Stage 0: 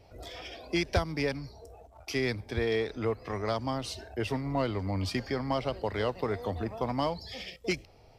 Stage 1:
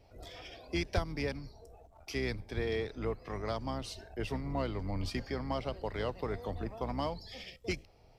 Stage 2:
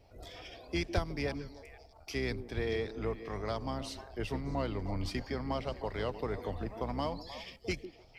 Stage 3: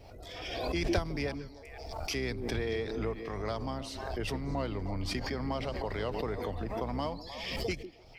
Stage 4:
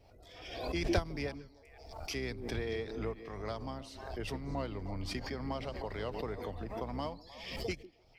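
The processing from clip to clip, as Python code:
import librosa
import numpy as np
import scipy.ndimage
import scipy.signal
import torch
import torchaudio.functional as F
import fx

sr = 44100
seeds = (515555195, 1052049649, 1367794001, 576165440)

y1 = fx.octave_divider(x, sr, octaves=2, level_db=-2.0)
y1 = y1 * 10.0 ** (-5.5 / 20.0)
y2 = fx.echo_stepped(y1, sr, ms=153, hz=310.0, octaves=1.4, feedback_pct=70, wet_db=-8)
y3 = fx.pre_swell(y2, sr, db_per_s=33.0)
y4 = fx.upward_expand(y3, sr, threshold_db=-45.0, expansion=1.5)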